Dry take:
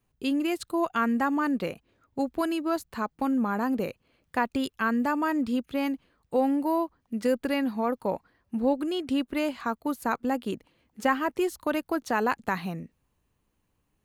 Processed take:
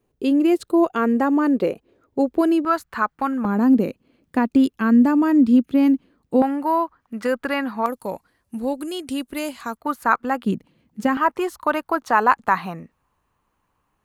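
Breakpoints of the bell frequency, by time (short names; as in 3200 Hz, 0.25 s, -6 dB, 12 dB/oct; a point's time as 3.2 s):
bell +13.5 dB 1.5 oct
410 Hz
from 2.65 s 1400 Hz
from 3.45 s 260 Hz
from 6.42 s 1300 Hz
from 7.86 s 10000 Hz
from 9.77 s 1300 Hz
from 10.44 s 180 Hz
from 11.17 s 1100 Hz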